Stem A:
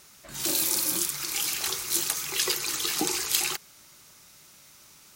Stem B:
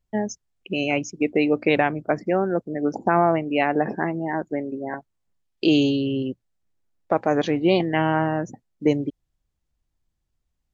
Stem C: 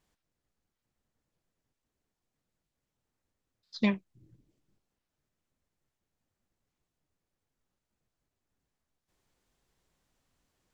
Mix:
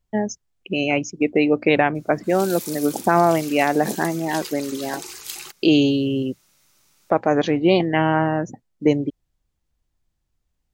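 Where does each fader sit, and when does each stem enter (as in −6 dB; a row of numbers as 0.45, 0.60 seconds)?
−8.0, +2.5, −15.0 decibels; 1.95, 0.00, 0.00 seconds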